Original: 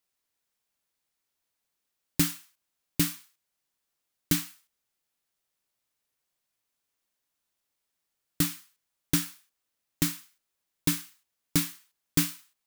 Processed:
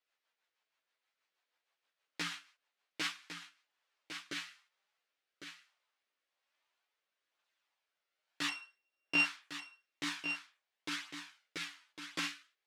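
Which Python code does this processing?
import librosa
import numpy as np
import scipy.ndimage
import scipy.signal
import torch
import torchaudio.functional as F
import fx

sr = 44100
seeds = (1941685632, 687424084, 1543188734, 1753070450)

p1 = fx.sample_sort(x, sr, block=16, at=(8.48, 9.24))
p2 = fx.over_compress(p1, sr, threshold_db=-28.0, ratio=-0.5)
p3 = p1 + (p2 * librosa.db_to_amplitude(1.0))
p4 = fx.rotary_switch(p3, sr, hz=6.3, then_hz=1.1, switch_at_s=2.67)
p5 = fx.chorus_voices(p4, sr, voices=2, hz=0.27, base_ms=13, depth_ms=4.0, mix_pct=55)
p6 = fx.bandpass_edges(p5, sr, low_hz=640.0, high_hz=3200.0)
p7 = p6 + 10.0 ** (-8.5 / 20.0) * np.pad(p6, (int(1104 * sr / 1000.0), 0))[:len(p6)]
y = p7 * librosa.db_to_amplitude(1.0)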